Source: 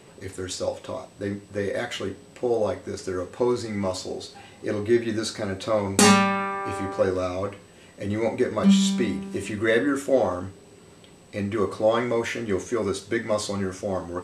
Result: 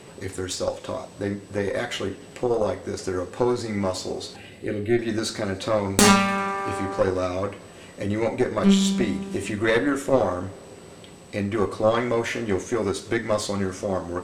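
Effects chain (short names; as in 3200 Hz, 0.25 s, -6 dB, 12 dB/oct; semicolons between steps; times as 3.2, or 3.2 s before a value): in parallel at +1 dB: compressor, threshold -35 dBFS, peak gain reduction 21 dB; on the sum: added harmonics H 4 -11 dB, 6 -26 dB, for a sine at -2 dBFS; 4.36–4.99 fixed phaser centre 2400 Hz, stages 4; warbling echo 98 ms, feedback 79%, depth 140 cents, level -24 dB; gain -1.5 dB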